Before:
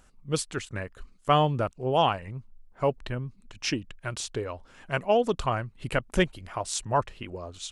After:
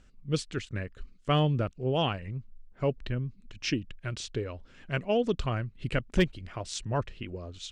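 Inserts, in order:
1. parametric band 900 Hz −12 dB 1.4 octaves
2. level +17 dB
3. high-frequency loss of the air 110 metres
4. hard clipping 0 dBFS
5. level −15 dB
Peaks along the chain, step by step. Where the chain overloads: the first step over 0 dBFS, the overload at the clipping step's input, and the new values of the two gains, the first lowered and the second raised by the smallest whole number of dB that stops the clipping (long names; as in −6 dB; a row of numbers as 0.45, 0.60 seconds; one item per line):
−11.5, +5.5, +4.5, 0.0, −15.0 dBFS
step 2, 4.5 dB
step 2 +12 dB, step 5 −10 dB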